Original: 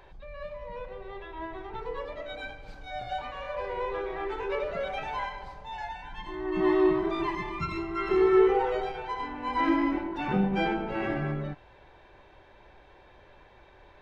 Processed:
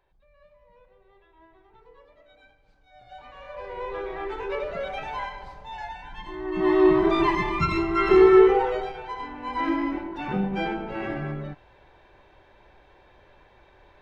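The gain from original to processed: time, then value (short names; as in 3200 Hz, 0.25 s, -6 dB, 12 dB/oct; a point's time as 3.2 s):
2.91 s -17.5 dB
3.31 s -7 dB
4.04 s +1 dB
6.57 s +1 dB
7.07 s +8.5 dB
8.16 s +8.5 dB
8.96 s -0.5 dB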